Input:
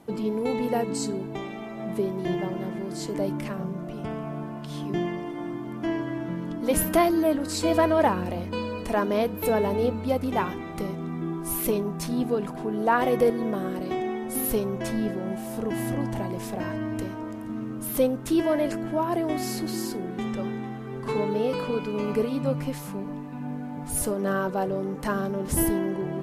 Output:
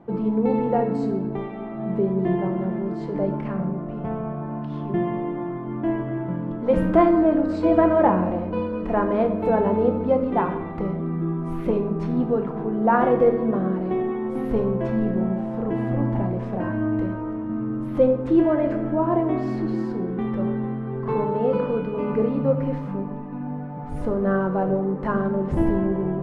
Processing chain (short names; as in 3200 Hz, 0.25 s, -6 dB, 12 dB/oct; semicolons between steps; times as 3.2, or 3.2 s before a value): LPF 1400 Hz 12 dB/oct; reverb RT60 0.95 s, pre-delay 6 ms, DRR 5 dB; gain +3 dB